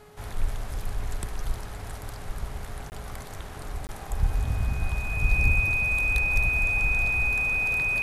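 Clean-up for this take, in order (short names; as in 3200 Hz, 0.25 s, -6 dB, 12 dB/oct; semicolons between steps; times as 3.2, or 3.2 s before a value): de-hum 419.4 Hz, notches 19; notch 2500 Hz, Q 30; interpolate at 2.9/3.87, 19 ms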